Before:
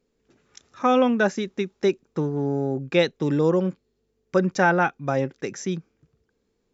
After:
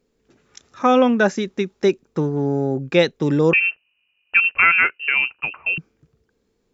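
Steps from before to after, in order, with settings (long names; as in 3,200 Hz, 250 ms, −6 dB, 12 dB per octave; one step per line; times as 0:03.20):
0:03.53–0:05.78: voice inversion scrambler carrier 2,900 Hz
level +4 dB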